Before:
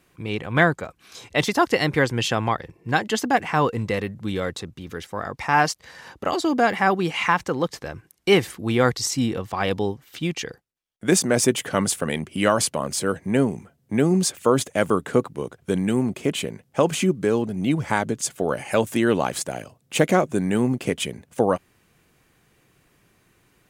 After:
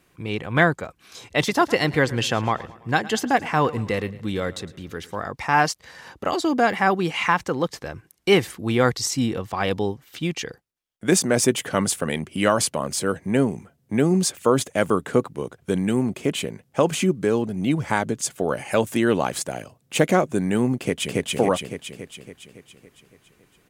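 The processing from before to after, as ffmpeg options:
ffmpeg -i in.wav -filter_complex "[0:a]asplit=3[link_01][link_02][link_03];[link_01]afade=type=out:start_time=1.47:duration=0.02[link_04];[link_02]aecho=1:1:110|220|330|440:0.112|0.0572|0.0292|0.0149,afade=type=in:start_time=1.47:duration=0.02,afade=type=out:start_time=5.2:duration=0.02[link_05];[link_03]afade=type=in:start_time=5.2:duration=0.02[link_06];[link_04][link_05][link_06]amix=inputs=3:normalize=0,asplit=2[link_07][link_08];[link_08]afade=type=in:start_time=20.77:duration=0.01,afade=type=out:start_time=21.26:duration=0.01,aecho=0:1:280|560|840|1120|1400|1680|1960|2240|2520|2800:1|0.6|0.36|0.216|0.1296|0.07776|0.046656|0.0279936|0.0167962|0.0100777[link_09];[link_07][link_09]amix=inputs=2:normalize=0" out.wav

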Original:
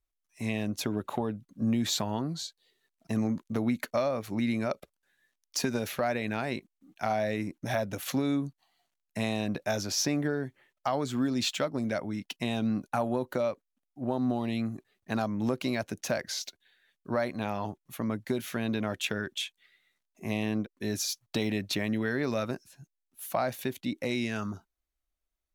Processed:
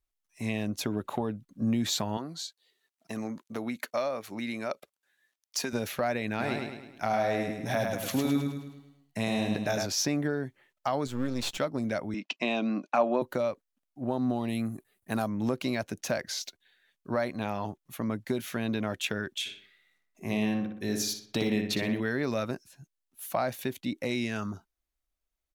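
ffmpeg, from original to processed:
ffmpeg -i in.wav -filter_complex "[0:a]asettb=1/sr,asplit=3[link_01][link_02][link_03];[link_01]atrim=end=2.174[link_04];[link_02]atrim=start=2.17:end=5.73,asetpts=PTS-STARTPTS,afade=type=in:duration=0.004:curve=qsin,afade=type=out:start_time=3.556:duration=0.004:curve=qsin,highpass=frequency=460:poles=1[link_05];[link_03]atrim=start=5.726[link_06];[link_04][link_05]acrossfade=duration=0.004:curve1=hsin:curve2=qsin[link_07];[link_07][link_06]acrossfade=duration=0.004:curve1=qsin:curve2=hsin,asplit=3[link_08][link_09][link_10];[link_08]afade=type=out:start_time=6.39:duration=0.02[link_11];[link_09]aecho=1:1:105|210|315|420|525|630:0.631|0.303|0.145|0.0698|0.0335|0.0161,afade=type=in:start_time=6.39:duration=0.02,afade=type=out:start_time=9.85:duration=0.02[link_12];[link_10]afade=type=in:start_time=9.85:duration=0.02[link_13];[link_11][link_12][link_13]amix=inputs=3:normalize=0,asettb=1/sr,asplit=3[link_14][link_15][link_16];[link_14]atrim=end=11.074[link_17];[link_15]atrim=start=11.07:end=11.58,asetpts=PTS-STARTPTS,afade=type=in:duration=0.004:curve=qsin,afade=type=out:start_time=0.506:duration=0.004:curve=qsin,aeval=exprs='if(lt(val(0),0),0.251*val(0),val(0))':channel_layout=same[link_18];[link_16]atrim=start=11.576[link_19];[link_17][link_18]acrossfade=duration=0.004:curve1=hsin:curve2=qsin[link_20];[link_20][link_19]acrossfade=duration=0.004:curve1=qsin:curve2=hsin,asettb=1/sr,asplit=3[link_21][link_22][link_23];[link_21]atrim=end=12.144[link_24];[link_22]atrim=start=12.14:end=13.22,asetpts=PTS-STARTPTS,afade=type=in:duration=0.004:curve=qsin,afade=type=out:start_time=1.076:duration=0.004:curve=qsin,highpass=frequency=200:width=0.5412,highpass=frequency=200:width=1.3066,equalizer=frequency=320:width_type=q:width=4:gain=4,equalizer=frequency=620:width_type=q:width=4:gain=8,equalizer=frequency=1100:width_type=q:width=4:gain=7,equalizer=frequency=2500:width_type=q:width=4:gain=9,lowpass=frequency=6400:width=0.5412,lowpass=frequency=6400:width=1.3066[link_25];[link_23]atrim=start=13.216[link_26];[link_24][link_25]acrossfade=duration=0.004:curve1=hsin:curve2=qsin[link_27];[link_27][link_26]acrossfade=duration=0.004:curve1=qsin:curve2=hsin,asettb=1/sr,asplit=3[link_28][link_29][link_30];[link_28]atrim=end=14.484[link_31];[link_29]atrim=start=14.48:end=15.29,asetpts=PTS-STARTPTS,afade=type=in:duration=0.004:curve=qsin,afade=type=out:start_time=0.806:duration=0.004:curve=qsin,highshelf=frequency=7500:width_type=q:width=1.5:gain=9.5[link_32];[link_30]atrim=start=15.286[link_33];[link_31][link_32]acrossfade=duration=0.004:curve1=hsin:curve2=qsin[link_34];[link_34][link_33]acrossfade=duration=0.004:curve1=qsin:curve2=hsin,asplit=3[link_35][link_36][link_37];[link_35]afade=type=out:start_time=19.45:duration=0.02[link_38];[link_36]asplit=2[link_39][link_40];[link_40]adelay=61,lowpass=frequency=3200:poles=1,volume=-4.5dB,asplit=2[link_41][link_42];[link_42]adelay=61,lowpass=frequency=3200:poles=1,volume=0.51,asplit=2[link_43][link_44];[link_44]adelay=61,lowpass=frequency=3200:poles=1,volume=0.51,asplit=2[link_45][link_46];[link_46]adelay=61,lowpass=frequency=3200:poles=1,volume=0.51,asplit=2[link_47][link_48];[link_48]adelay=61,lowpass=frequency=3200:poles=1,volume=0.51,asplit=2[link_49][link_50];[link_50]adelay=61,lowpass=frequency=3200:poles=1,volume=0.51,asplit=2[link_51][link_52];[link_52]adelay=61,lowpass=frequency=3200:poles=1,volume=0.51[link_53];[link_39][link_41][link_43][link_45][link_47][link_49][link_51][link_53]amix=inputs=8:normalize=0,afade=type=in:start_time=19.45:duration=0.02,afade=type=out:start_time=21.99:duration=0.02[link_54];[link_37]afade=type=in:start_time=21.99:duration=0.02[link_55];[link_38][link_54][link_55]amix=inputs=3:normalize=0" out.wav

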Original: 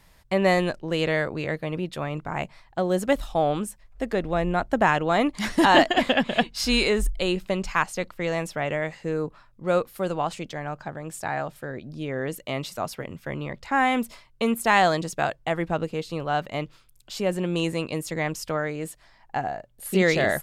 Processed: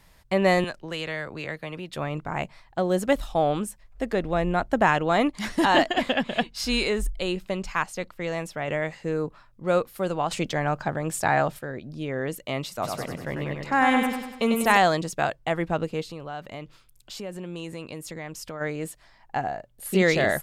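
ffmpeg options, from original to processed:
ffmpeg -i in.wav -filter_complex "[0:a]asettb=1/sr,asplit=3[link_01][link_02][link_03];[link_01]atrim=end=0.644[link_04];[link_02]atrim=start=0.64:end=1.93,asetpts=PTS-STARTPTS,afade=type=in:duration=0.004:curve=qsin,afade=type=out:start_time=1.286:duration=0.004:curve=qsin,acrossover=split=250|810[link_05][link_06][link_07];[link_05]acompressor=threshold=-41dB:ratio=4[link_08];[link_06]acompressor=threshold=-39dB:ratio=4[link_09];[link_07]acompressor=threshold=-30dB:ratio=4[link_10];[link_08][link_09][link_10]amix=inputs=3:normalize=0[link_11];[link_03]atrim=start=1.926[link_12];[link_04][link_11]acrossfade=duration=0.004:curve1=hsin:curve2=qsin[link_13];[link_13][link_12]acrossfade=duration=0.004:curve1=qsin:curve2=hsin,asettb=1/sr,asplit=3[link_14][link_15][link_16];[link_14]atrim=end=10.314[link_17];[link_15]atrim=start=10.31:end=11.59,asetpts=PTS-STARTPTS,afade=type=in:duration=0.004:curve=qsin,afade=type=out:start_time=1.276:duration=0.004:curve=qsin,acontrast=78[link_18];[link_16]atrim=start=11.586[link_19];[link_17][link_18]acrossfade=duration=0.004:curve1=hsin:curve2=qsin[link_20];[link_20][link_19]acrossfade=duration=0.004:curve1=qsin:curve2=hsin,asplit=3[link_21][link_22][link_23];[link_21]afade=type=out:start_time=12.82:duration=0.02[link_24];[link_22]aecho=1:1:97|194|291|388|485|582|679:0.631|0.322|0.164|0.0837|0.0427|0.0218|0.0111,afade=type=in:start_time=12.82:duration=0.02,afade=type=out:start_time=14.76:duration=0.02[link_25];[link_23]afade=type=in:start_time=14.76:duration=0.02[link_26];[link_24][link_25][link_26]amix=inputs=3:normalize=0,asplit=3[link_27][link_28][link_29];[link_27]afade=type=out:start_time=16.07:duration=0.02[link_30];[link_28]acompressor=threshold=-36dB:ratio=2.5:attack=3.2:release=140:knee=1:detection=peak,afade=type=in:start_time=16.07:duration=0.02,afade=type=out:start_time=18.6:duration=0.02[link_31];[link_29]afade=type=in:start_time=18.6:duration=0.02[link_32];[link_30][link_31][link_32]amix=inputs=3:normalize=0,asplit=3[link_33][link_34][link_35];[link_33]atrim=end=5.302[link_36];[link_34]atrim=start=5.298:end=8.682,asetpts=PTS-STARTPTS,volume=-3dB[link_37];[link_35]atrim=start=8.678[link_38];[link_36][link_37]acrossfade=duration=0.004:curve1=hsin:curve2=hsin[link_39];[link_39][link_38]acrossfade=duration=0.004:curve1=hsin:curve2=hsin" out.wav

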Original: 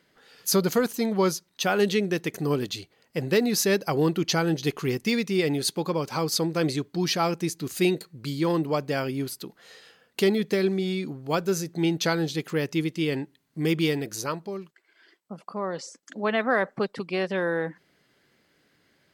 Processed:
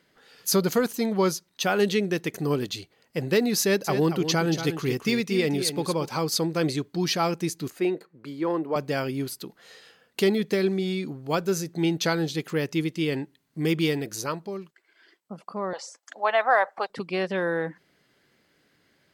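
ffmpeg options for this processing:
ffmpeg -i in.wav -filter_complex "[0:a]asettb=1/sr,asplit=3[link_01][link_02][link_03];[link_01]atrim=end=3.614[link_04];[link_02]atrim=start=3.61:end=6.09,asetpts=PTS-STARTPTS,afade=type=in:duration=0.004:curve=qsin,afade=type=out:start_time=2.476:duration=0.004:curve=qsin,aecho=1:1:232:0.335,atrim=end_sample=109368[link_05];[link_03]atrim=start=6.086[link_06];[link_04][link_05]acrossfade=duration=0.004:curve1=hsin:curve2=qsin[link_07];[link_07][link_06]acrossfade=duration=0.004:curve1=qsin:curve2=hsin,asettb=1/sr,asplit=3[link_08][link_09][link_10];[link_08]atrim=end=7.704[link_11];[link_09]atrim=start=7.7:end=8.76,asetpts=PTS-STARTPTS,afade=type=in:duration=0.004:curve=qsin,afade=type=out:start_time=1.056:duration=0.004:curve=qsin,acrossover=split=250 2100:gain=0.158 1 0.158[link_12][link_13][link_14];[link_12][link_13][link_14]amix=inputs=3:normalize=0[link_15];[link_10]atrim=start=8.756[link_16];[link_11][link_15]acrossfade=duration=0.004:curve1=hsin:curve2=qsin[link_17];[link_17][link_16]acrossfade=duration=0.004:curve1=qsin:curve2=hsin,asettb=1/sr,asplit=3[link_18][link_19][link_20];[link_18]atrim=end=15.734[link_21];[link_19]atrim=start=15.73:end=16.9,asetpts=PTS-STARTPTS,afade=type=in:duration=0.004:curve=qsin,afade=type=out:start_time=1.166:duration=0.004:curve=qsin,highpass=frequency=770:width_type=q:width=2.8[link_22];[link_20]atrim=start=16.896[link_23];[link_21][link_22]acrossfade=duration=0.004:curve1=hsin:curve2=qsin[link_24];[link_24][link_23]acrossfade=duration=0.004:curve1=qsin:curve2=hsin" out.wav

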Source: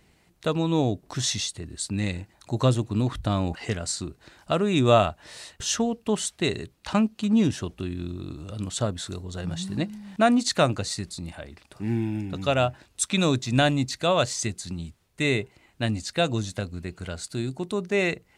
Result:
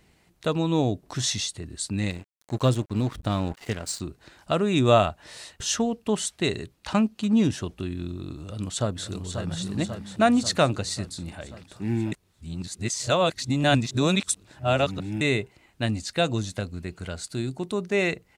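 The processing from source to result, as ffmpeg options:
ffmpeg -i in.wav -filter_complex "[0:a]asettb=1/sr,asplit=3[link_01][link_02][link_03];[link_01]atrim=end=2.104[link_04];[link_02]atrim=start=2.1:end=4,asetpts=PTS-STARTPTS,afade=type=in:duration=0.004:curve=qsin,afade=type=out:start_time=1.896:duration=0.004:curve=qsin,aeval=exprs='sgn(val(0))*max(abs(val(0))-0.0106,0)':channel_layout=same[link_05];[link_03]atrim=start=3.996[link_06];[link_04][link_05]acrossfade=duration=0.004:curve1=hsin:curve2=qsin[link_07];[link_07][link_06]acrossfade=duration=0.004:curve1=qsin:curve2=hsin,asplit=2[link_08][link_09];[link_09]afade=type=in:start_time=8.42:duration=0.01,afade=type=out:start_time=9.47:duration=0.01,aecho=0:1:540|1080|1620|2160|2700|3240|3780|4320|4860|5400|5940:0.446684|0.312679|0.218875|0.153212|0.107249|0.0750741|0.0525519|0.0367863|0.0257504|0.0180253|0.0126177[link_10];[link_08][link_10]amix=inputs=2:normalize=0,asplit=3[link_11][link_12][link_13];[link_11]atrim=end=12.122[link_14];[link_12]atrim=start=12.118:end=15.212,asetpts=PTS-STARTPTS,areverse[link_15];[link_13]atrim=start=15.208[link_16];[link_14][link_15]acrossfade=duration=0.004:curve1=hsin:curve2=hsin[link_17];[link_17][link_16]acrossfade=duration=0.004:curve1=hsin:curve2=hsin" out.wav

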